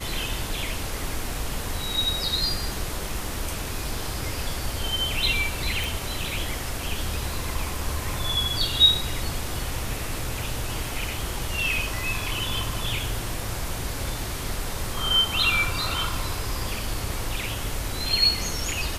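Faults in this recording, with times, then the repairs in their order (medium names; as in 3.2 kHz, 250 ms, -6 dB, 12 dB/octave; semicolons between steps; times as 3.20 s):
5.84 s: pop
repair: de-click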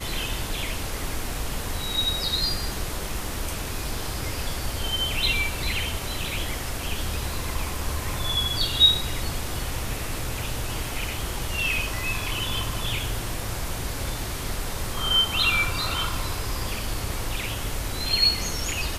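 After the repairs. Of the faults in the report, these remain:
nothing left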